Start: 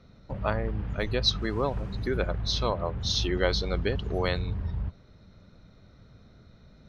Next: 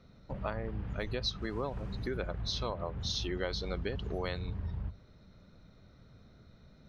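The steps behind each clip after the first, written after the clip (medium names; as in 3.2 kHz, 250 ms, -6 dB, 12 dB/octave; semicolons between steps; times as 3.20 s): hum notches 50/100 Hz; compression 3:1, threshold -29 dBFS, peak gain reduction 8 dB; trim -3.5 dB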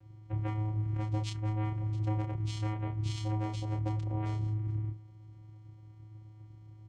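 vocoder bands 4, square 107 Hz; doubling 29 ms -4.5 dB; trim +3 dB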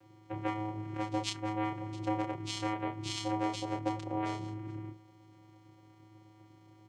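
high-pass 300 Hz 12 dB/octave; trim +7 dB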